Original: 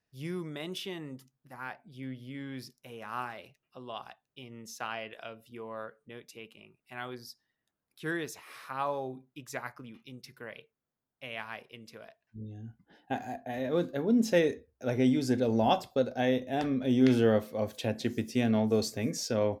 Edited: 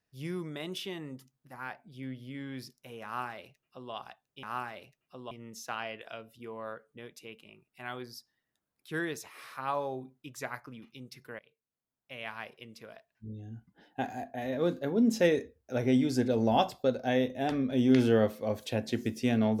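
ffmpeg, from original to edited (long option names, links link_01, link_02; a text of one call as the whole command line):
ffmpeg -i in.wav -filter_complex "[0:a]asplit=4[link_01][link_02][link_03][link_04];[link_01]atrim=end=4.432[link_05];[link_02]atrim=start=3.048:end=3.932[link_06];[link_03]atrim=start=4.428:end=10.51,asetpts=PTS-STARTPTS,afade=type=out:start_time=6.078:duration=0.004:curve=hsin:silence=0.112202[link_07];[link_04]atrim=start=10.51,asetpts=PTS-STARTPTS,afade=type=in:duration=0.98:silence=0.112202[link_08];[link_05][link_06]acrossfade=duration=0.004:curve1=hsin:curve2=hsin[link_09];[link_07][link_08]concat=n=2:v=0:a=1[link_10];[link_09][link_10]acrossfade=duration=0.004:curve1=hsin:curve2=hsin" out.wav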